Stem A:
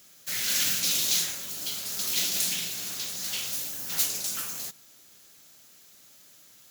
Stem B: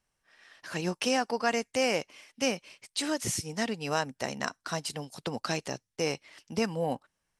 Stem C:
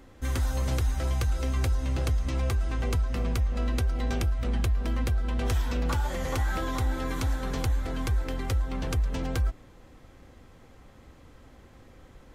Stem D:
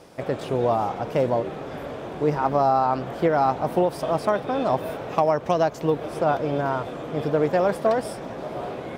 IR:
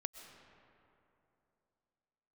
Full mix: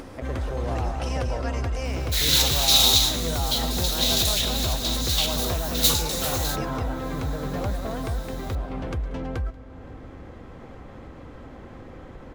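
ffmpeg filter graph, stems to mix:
-filter_complex "[0:a]equalizer=frequency=3800:width=3.9:gain=13,adelay=1850,volume=1.5dB,asplit=2[link_01][link_02];[link_02]volume=-6.5dB[link_03];[1:a]volume=-8dB,asplit=3[link_04][link_05][link_06];[link_05]volume=-6.5dB[link_07];[2:a]lowpass=frequency=1300:poles=1,volume=-0.5dB,asplit=3[link_08][link_09][link_10];[link_09]volume=-4.5dB[link_11];[link_10]volume=-20.5dB[link_12];[3:a]asubboost=boost=6:cutoff=150,alimiter=limit=-15dB:level=0:latency=1,volume=-9.5dB,asplit=2[link_13][link_14];[link_14]volume=-5dB[link_15];[link_06]apad=whole_len=377057[link_16];[link_01][link_16]sidechaincompress=threshold=-44dB:ratio=3:attack=5.4:release=168[link_17];[4:a]atrim=start_sample=2205[link_18];[link_03][link_11]amix=inputs=2:normalize=0[link_19];[link_19][link_18]afir=irnorm=-1:irlink=0[link_20];[link_07][link_12][link_15]amix=inputs=3:normalize=0,aecho=0:1:186:1[link_21];[link_17][link_04][link_08][link_13][link_20][link_21]amix=inputs=6:normalize=0,lowshelf=frequency=95:gain=-7.5,acompressor=mode=upward:threshold=-30dB:ratio=2.5"

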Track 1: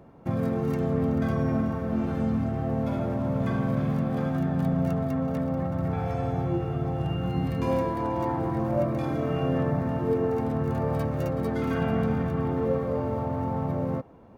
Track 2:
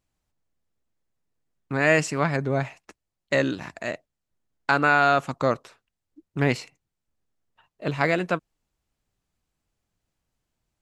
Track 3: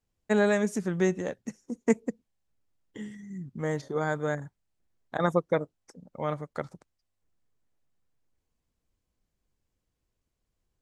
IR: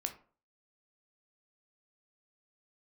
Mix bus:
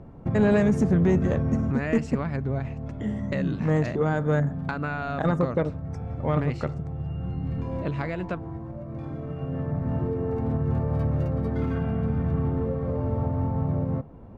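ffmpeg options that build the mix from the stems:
-filter_complex "[0:a]alimiter=limit=-23dB:level=0:latency=1:release=278,volume=-1.5dB,asplit=2[link_01][link_02];[link_02]volume=-11.5dB[link_03];[1:a]acompressor=threshold=-26dB:ratio=4,volume=-3dB,asplit=2[link_04][link_05];[2:a]alimiter=limit=-18dB:level=0:latency=1:release=104,adelay=50,volume=2dB,asplit=2[link_06][link_07];[link_07]volume=-9.5dB[link_08];[link_05]apad=whole_len=634073[link_09];[link_01][link_09]sidechaincompress=threshold=-46dB:ratio=8:attack=9.3:release=1150[link_10];[3:a]atrim=start_sample=2205[link_11];[link_03][link_08]amix=inputs=2:normalize=0[link_12];[link_12][link_11]afir=irnorm=-1:irlink=0[link_13];[link_10][link_04][link_06][link_13]amix=inputs=4:normalize=0,aemphasis=mode=reproduction:type=bsi,asoftclip=type=tanh:threshold=-12.5dB"

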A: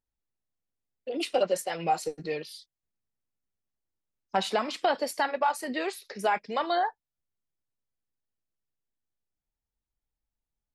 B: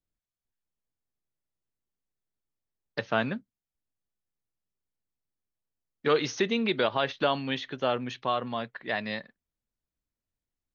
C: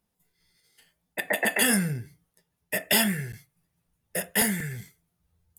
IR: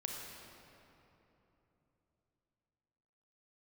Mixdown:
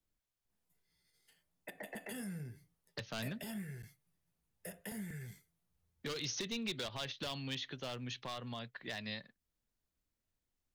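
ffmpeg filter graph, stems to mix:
-filter_complex "[1:a]asoftclip=type=hard:threshold=-22dB,alimiter=level_in=3dB:limit=-24dB:level=0:latency=1:release=292,volume=-3dB,acrossover=split=150|3000[link_01][link_02][link_03];[link_02]acompressor=threshold=-56dB:ratio=2[link_04];[link_01][link_04][link_03]amix=inputs=3:normalize=0,volume=2dB[link_05];[2:a]aeval=exprs='0.316*(cos(1*acos(clip(val(0)/0.316,-1,1)))-cos(1*PI/2))+0.00631*(cos(7*acos(clip(val(0)/0.316,-1,1)))-cos(7*PI/2))':channel_layout=same,adelay=500,volume=-9dB,acrossover=split=200|720[link_06][link_07][link_08];[link_06]acompressor=threshold=-45dB:ratio=4[link_09];[link_07]acompressor=threshold=-48dB:ratio=4[link_10];[link_08]acompressor=threshold=-48dB:ratio=4[link_11];[link_09][link_10][link_11]amix=inputs=3:normalize=0,alimiter=level_in=10.5dB:limit=-24dB:level=0:latency=1:release=69,volume=-10.5dB,volume=0dB[link_12];[link_05][link_12]amix=inputs=2:normalize=0"

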